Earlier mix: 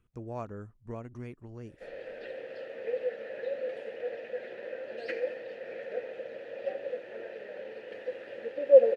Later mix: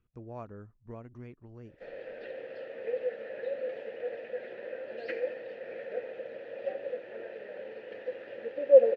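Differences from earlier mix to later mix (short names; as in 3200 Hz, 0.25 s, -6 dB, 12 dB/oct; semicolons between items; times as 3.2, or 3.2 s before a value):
speech -4.0 dB; master: add air absorption 130 m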